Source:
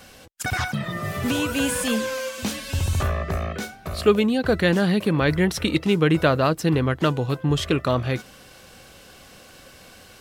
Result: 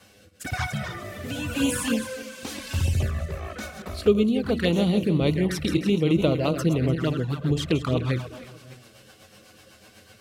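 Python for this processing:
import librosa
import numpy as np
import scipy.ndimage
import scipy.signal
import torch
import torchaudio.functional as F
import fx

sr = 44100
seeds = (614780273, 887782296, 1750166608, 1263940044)

y = fx.reverse_delay_fb(x, sr, ms=148, feedback_pct=55, wet_db=-8)
y = fx.rotary_switch(y, sr, hz=1.0, then_hz=8.0, switch_at_s=4.94)
y = fx.env_flanger(y, sr, rest_ms=11.0, full_db=-17.5)
y = scipy.signal.sosfilt(scipy.signal.butter(2, 49.0, 'highpass', fs=sr, output='sos'), y)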